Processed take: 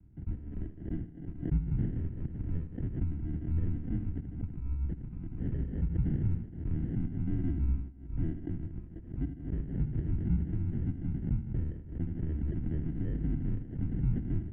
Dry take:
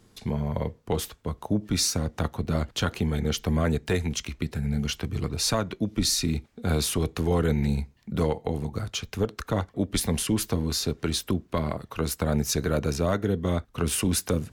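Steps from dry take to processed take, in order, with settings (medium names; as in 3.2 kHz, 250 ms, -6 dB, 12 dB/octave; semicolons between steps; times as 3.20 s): de-hum 74.39 Hz, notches 33; on a send: thinning echo 79 ms, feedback 79%, high-pass 170 Hz, level -9 dB; on the sum: sample-and-hold 34×; mistuned SSB -150 Hz 180–2700 Hz; FFT filter 140 Hz 0 dB, 330 Hz -9 dB, 560 Hz -27 dB; expander -33 dBFS; dynamic bell 710 Hz, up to -3 dB, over -47 dBFS, Q 0.85; swell ahead of each attack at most 99 dB/s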